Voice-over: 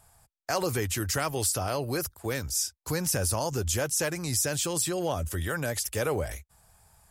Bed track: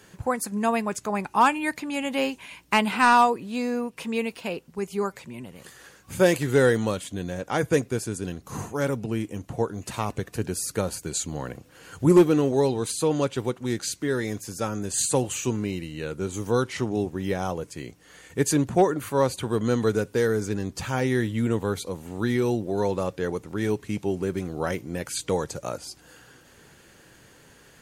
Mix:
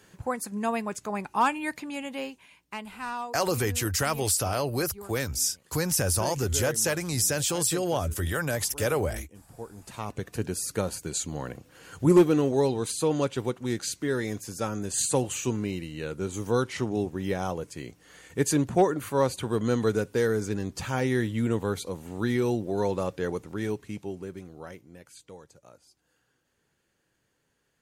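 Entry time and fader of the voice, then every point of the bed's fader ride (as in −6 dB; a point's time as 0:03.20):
2.85 s, +2.0 dB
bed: 0:01.83 −4.5 dB
0:02.81 −17 dB
0:09.49 −17 dB
0:10.30 −2 dB
0:23.39 −2 dB
0:25.35 −21.5 dB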